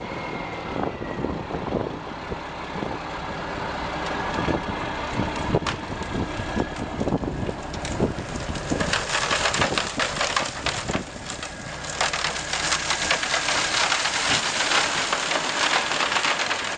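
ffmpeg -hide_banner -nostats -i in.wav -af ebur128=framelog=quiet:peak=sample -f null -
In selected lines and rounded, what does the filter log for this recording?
Integrated loudness:
  I:         -24.6 LUFS
  Threshold: -34.6 LUFS
Loudness range:
  LRA:         8.5 LU
  Threshold: -44.8 LUFS
  LRA low:   -29.6 LUFS
  LRA high:  -21.1 LUFS
Sample peak:
  Peak:       -3.2 dBFS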